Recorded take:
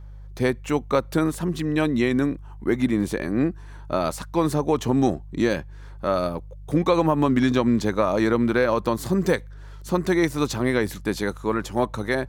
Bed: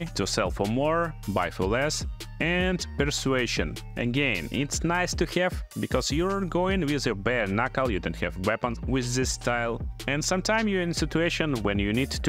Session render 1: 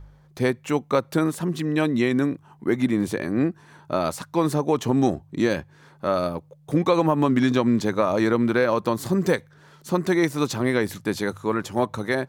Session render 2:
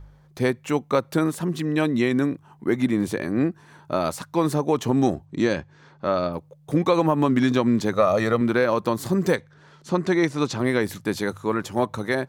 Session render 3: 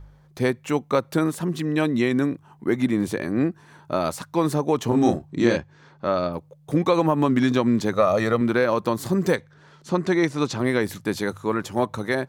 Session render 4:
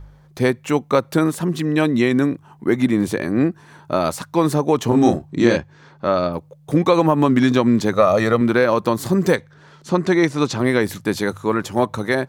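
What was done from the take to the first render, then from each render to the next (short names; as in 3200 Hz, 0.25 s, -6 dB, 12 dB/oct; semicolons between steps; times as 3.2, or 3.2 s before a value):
de-hum 50 Hz, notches 2
5.25–6.32 LPF 9500 Hz -> 5000 Hz 24 dB/oct; 7.93–8.41 comb 1.6 ms, depth 58%; 9.36–10.59 LPF 6800 Hz
4.88–5.58 doubler 34 ms -3 dB
gain +4.5 dB; limiter -2 dBFS, peak gain reduction 1 dB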